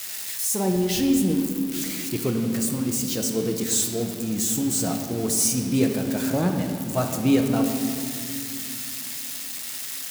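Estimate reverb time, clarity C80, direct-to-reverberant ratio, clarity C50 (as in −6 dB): 2.5 s, 6.5 dB, 3.0 dB, 5.0 dB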